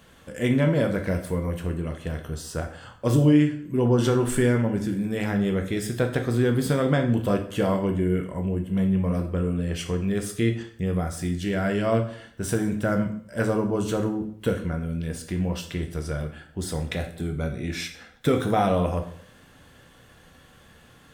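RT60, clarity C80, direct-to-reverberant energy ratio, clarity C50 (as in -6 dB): 0.60 s, 13.5 dB, 4.0 dB, 10.0 dB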